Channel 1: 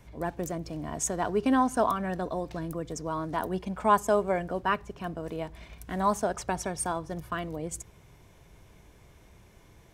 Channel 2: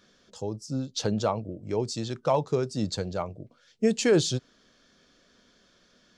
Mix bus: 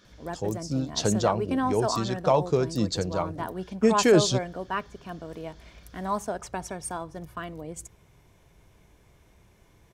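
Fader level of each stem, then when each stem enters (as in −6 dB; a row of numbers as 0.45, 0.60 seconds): −3.0, +2.5 decibels; 0.05, 0.00 seconds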